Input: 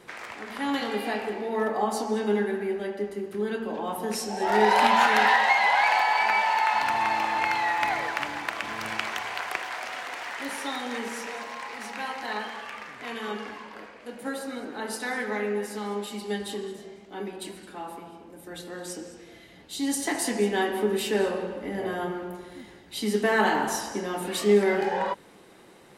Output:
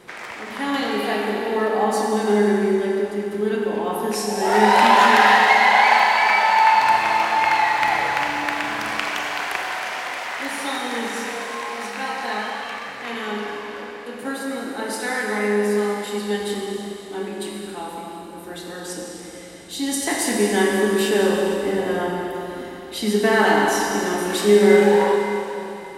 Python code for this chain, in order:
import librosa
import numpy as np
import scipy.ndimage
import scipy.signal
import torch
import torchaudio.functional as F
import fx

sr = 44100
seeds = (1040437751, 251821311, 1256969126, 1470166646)

y = fx.rev_schroeder(x, sr, rt60_s=3.3, comb_ms=30, drr_db=0.5)
y = y * 10.0 ** (4.0 / 20.0)